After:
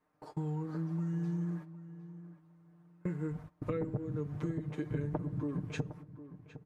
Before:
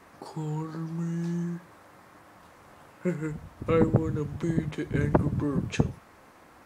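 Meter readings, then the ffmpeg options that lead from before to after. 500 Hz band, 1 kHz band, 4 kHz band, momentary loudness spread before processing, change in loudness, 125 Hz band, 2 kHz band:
−11.0 dB, −12.0 dB, below −10 dB, 12 LU, −8.5 dB, −7.0 dB, −12.0 dB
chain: -filter_complex "[0:a]agate=range=-21dB:threshold=-41dB:ratio=16:detection=peak,highshelf=frequency=2100:gain=-9.5,aecho=1:1:6.6:0.88,acompressor=threshold=-28dB:ratio=10,asplit=2[link_01][link_02];[link_02]adelay=759,lowpass=frequency=2400:poles=1,volume=-14dB,asplit=2[link_03][link_04];[link_04]adelay=759,lowpass=frequency=2400:poles=1,volume=0.23,asplit=2[link_05][link_06];[link_06]adelay=759,lowpass=frequency=2400:poles=1,volume=0.23[link_07];[link_01][link_03][link_05][link_07]amix=inputs=4:normalize=0,aresample=32000,aresample=44100,volume=-4dB"

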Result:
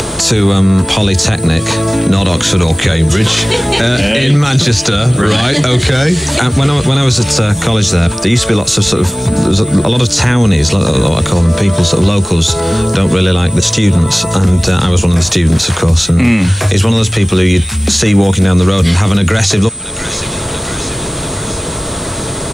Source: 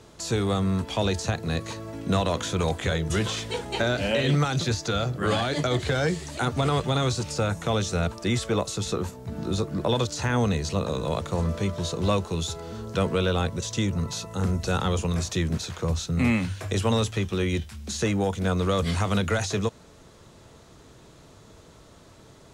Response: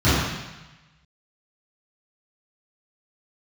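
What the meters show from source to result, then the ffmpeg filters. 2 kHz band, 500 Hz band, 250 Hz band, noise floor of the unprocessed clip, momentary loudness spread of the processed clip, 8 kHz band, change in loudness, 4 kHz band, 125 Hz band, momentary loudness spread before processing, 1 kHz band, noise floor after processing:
+14.5 dB, +12.5 dB, +15.5 dB, −51 dBFS, 7 LU, +21.5 dB, +15.5 dB, +17.5 dB, +16.5 dB, 6 LU, +11.5 dB, −19 dBFS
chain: -filter_complex "[0:a]acrossover=split=390|1600[link_01][link_02][link_03];[link_02]acompressor=threshold=-37dB:ratio=6[link_04];[link_03]aecho=1:1:686|1372|2058|2744|3430:0.1|0.06|0.036|0.0216|0.013[link_05];[link_01][link_04][link_05]amix=inputs=3:normalize=0,acompressor=mode=upward:threshold=-29dB:ratio=2.5,aeval=exprs='val(0)+0.00631*sin(2*PI*8100*n/s)':channel_layout=same,alimiter=level_in=22.5dB:limit=-1dB:release=50:level=0:latency=1,volume=-1dB"

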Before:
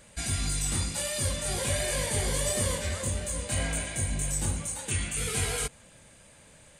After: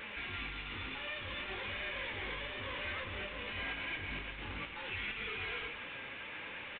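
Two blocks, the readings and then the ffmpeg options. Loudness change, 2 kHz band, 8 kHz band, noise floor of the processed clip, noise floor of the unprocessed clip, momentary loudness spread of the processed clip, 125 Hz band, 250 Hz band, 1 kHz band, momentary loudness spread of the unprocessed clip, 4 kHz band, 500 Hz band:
−10.5 dB, −1.0 dB, below −40 dB, −46 dBFS, −55 dBFS, 5 LU, −18.0 dB, −12.0 dB, −5.0 dB, 4 LU, −7.0 dB, −12.0 dB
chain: -filter_complex "[0:a]asplit=2[link_01][link_02];[link_02]highpass=frequency=720:poles=1,volume=38dB,asoftclip=type=tanh:threshold=-15dB[link_03];[link_01][link_03]amix=inputs=2:normalize=0,lowpass=frequency=1100:poles=1,volume=-6dB,flanger=delay=4.4:depth=3.2:regen=70:speed=0.58:shape=triangular,equalizer=frequency=160:width_type=o:width=0.67:gain=-12,equalizer=frequency=630:width_type=o:width=0.67:gain=-12,equalizer=frequency=2500:width_type=o:width=0.67:gain=8,aresample=8000,asoftclip=type=tanh:threshold=-27.5dB,aresample=44100,aecho=1:1:118:0.282,volume=-6dB"

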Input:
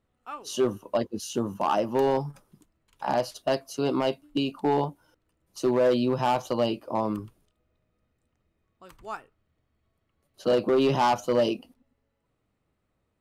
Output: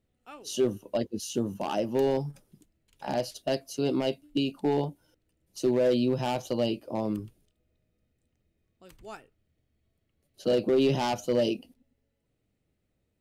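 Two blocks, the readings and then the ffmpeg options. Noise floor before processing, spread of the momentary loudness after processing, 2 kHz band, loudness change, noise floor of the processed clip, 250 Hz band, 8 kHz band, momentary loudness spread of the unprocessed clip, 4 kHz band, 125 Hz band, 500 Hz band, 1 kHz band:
−77 dBFS, 15 LU, −4.0 dB, −2.0 dB, −77 dBFS, −0.5 dB, 0.0 dB, 14 LU, −1.0 dB, 0.0 dB, −2.0 dB, −8.0 dB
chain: -af "equalizer=frequency=1100:width_type=o:width=0.97:gain=-13"

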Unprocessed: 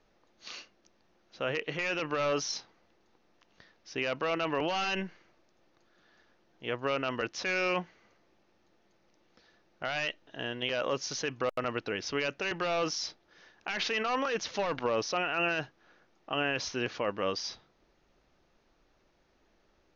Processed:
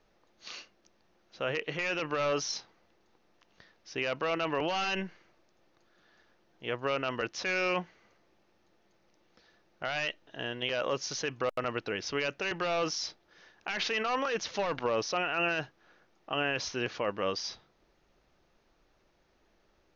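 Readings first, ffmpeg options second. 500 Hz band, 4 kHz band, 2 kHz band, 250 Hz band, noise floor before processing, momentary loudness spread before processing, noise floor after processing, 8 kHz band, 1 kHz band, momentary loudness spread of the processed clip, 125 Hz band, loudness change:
0.0 dB, 0.0 dB, 0.0 dB, −1.0 dB, −69 dBFS, 10 LU, −70 dBFS, can't be measured, 0.0 dB, 10 LU, 0.0 dB, 0.0 dB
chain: -af "equalizer=frequency=260:width_type=o:width=0.35:gain=-2.5"

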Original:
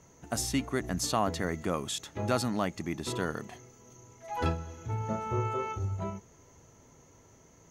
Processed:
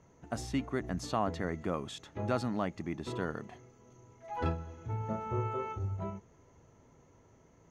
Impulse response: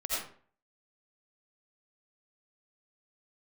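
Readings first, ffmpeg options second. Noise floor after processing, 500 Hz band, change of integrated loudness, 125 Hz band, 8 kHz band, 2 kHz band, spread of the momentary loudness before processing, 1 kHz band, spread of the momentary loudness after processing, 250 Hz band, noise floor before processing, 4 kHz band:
−63 dBFS, −3.0 dB, −3.5 dB, −2.5 dB, −14.0 dB, −5.0 dB, 10 LU, −3.5 dB, 10 LU, −2.5 dB, −59 dBFS, −9.5 dB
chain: -af "aemphasis=mode=reproduction:type=75fm,volume=-3.5dB"

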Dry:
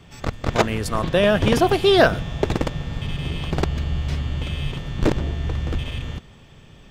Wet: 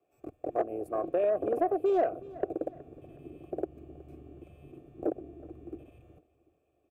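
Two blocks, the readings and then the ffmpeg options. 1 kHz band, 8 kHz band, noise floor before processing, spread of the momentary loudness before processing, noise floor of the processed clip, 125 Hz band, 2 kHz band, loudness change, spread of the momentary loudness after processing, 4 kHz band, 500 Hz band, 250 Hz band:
−10.5 dB, below −30 dB, −47 dBFS, 12 LU, −74 dBFS, −28.5 dB, −26.0 dB, −10.0 dB, 22 LU, below −35 dB, −9.0 dB, −13.0 dB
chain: -filter_complex "[0:a]afwtdn=0.0794,firequalizer=gain_entry='entry(100,0);entry(200,-7);entry(320,12);entry(940,-15);entry(1800,-9);entry(3100,-24);entry(5100,-22);entry(8500,-4);entry(13000,8)':delay=0.05:min_phase=1,asplit=2[link_01][link_02];[link_02]acompressor=threshold=-19dB:ratio=6,volume=-1dB[link_03];[link_01][link_03]amix=inputs=2:normalize=0,asplit=3[link_04][link_05][link_06];[link_04]bandpass=frequency=730:width_type=q:width=8,volume=0dB[link_07];[link_05]bandpass=frequency=1090:width_type=q:width=8,volume=-6dB[link_08];[link_06]bandpass=frequency=2440:width_type=q:width=8,volume=-9dB[link_09];[link_07][link_08][link_09]amix=inputs=3:normalize=0,acrossover=split=190[link_10][link_11];[link_11]acompressor=threshold=-24dB:ratio=3[link_12];[link_10][link_12]amix=inputs=2:normalize=0,crystalizer=i=6:c=0,asoftclip=type=tanh:threshold=-17dB,asplit=2[link_13][link_14];[link_14]aecho=0:1:370|740|1110:0.1|0.041|0.0168[link_15];[link_13][link_15]amix=inputs=2:normalize=0"

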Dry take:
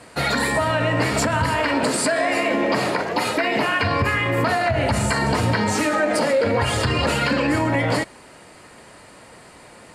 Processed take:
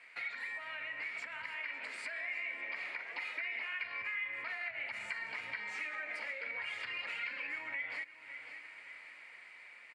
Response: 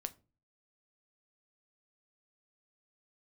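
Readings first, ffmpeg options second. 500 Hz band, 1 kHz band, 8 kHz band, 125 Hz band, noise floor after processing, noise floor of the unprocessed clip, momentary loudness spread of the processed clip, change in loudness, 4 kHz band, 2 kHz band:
−34.0 dB, −27.5 dB, below −30 dB, below −40 dB, −55 dBFS, −46 dBFS, 11 LU, −19.0 dB, −21.0 dB, −13.5 dB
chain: -filter_complex "[0:a]asplit=2[link_01][link_02];[link_02]aecho=0:1:554|1108|1662:0.0891|0.0357|0.0143[link_03];[link_01][link_03]amix=inputs=2:normalize=0,dynaudnorm=framelen=230:gausssize=21:maxgain=4.5dB,bandpass=frequency=2200:width_type=q:width=6.8:csg=0,acompressor=threshold=-45dB:ratio=2.5,volume=1dB"

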